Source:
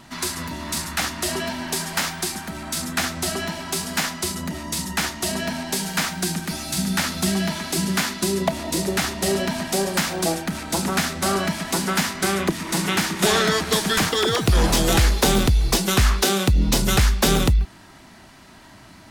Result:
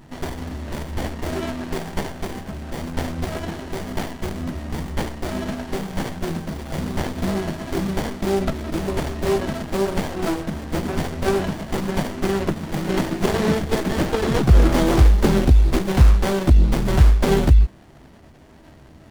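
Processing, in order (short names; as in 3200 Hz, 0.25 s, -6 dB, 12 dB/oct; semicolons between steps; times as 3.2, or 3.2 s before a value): chorus voices 6, 0.58 Hz, delay 14 ms, depth 1.7 ms; running maximum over 33 samples; gain +4.5 dB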